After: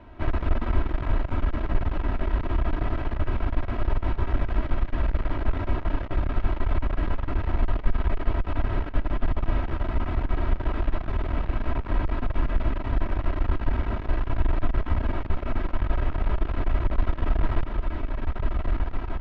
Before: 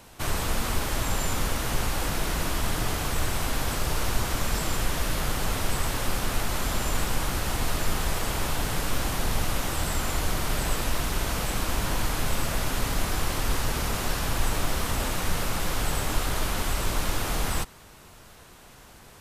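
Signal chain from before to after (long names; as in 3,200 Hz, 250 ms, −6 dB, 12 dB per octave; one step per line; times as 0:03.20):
stylus tracing distortion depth 0.028 ms
on a send: feedback delay with all-pass diffusion 1,371 ms, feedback 71%, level −8.5 dB
on the sum: speech leveller within 4 dB 2 s
comb filter 3.1 ms, depth 75%
asymmetric clip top −28.5 dBFS
Bessel low-pass filter 1,800 Hz, order 4
low-shelf EQ 310 Hz +7.5 dB
single-tap delay 243 ms −17 dB
level −3.5 dB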